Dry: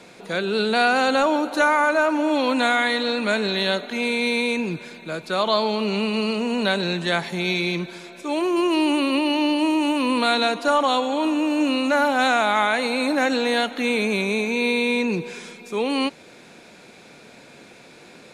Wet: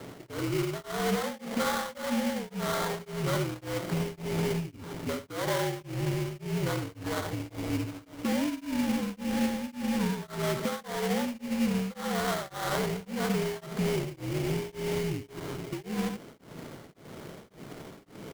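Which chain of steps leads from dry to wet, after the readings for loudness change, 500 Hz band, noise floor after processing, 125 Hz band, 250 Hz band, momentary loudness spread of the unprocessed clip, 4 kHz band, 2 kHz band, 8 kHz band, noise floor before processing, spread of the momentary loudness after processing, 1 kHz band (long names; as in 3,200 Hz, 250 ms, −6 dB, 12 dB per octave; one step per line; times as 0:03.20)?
−10.5 dB, −10.0 dB, −54 dBFS, +3.0 dB, −8.5 dB, 8 LU, −13.5 dB, −15.5 dB, −2.5 dB, −47 dBFS, 13 LU, −13.5 dB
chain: low-shelf EQ 490 Hz +8.5 dB
brickwall limiter −12 dBFS, peak gain reduction 6 dB
downward compressor, threshold −26 dBFS, peak gain reduction 10.5 dB
single-sideband voice off tune −70 Hz 190–3,400 Hz
single-tap delay 73 ms −7 dB
sample-rate reduction 2,600 Hz, jitter 20%
tremolo along a rectified sine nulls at 1.8 Hz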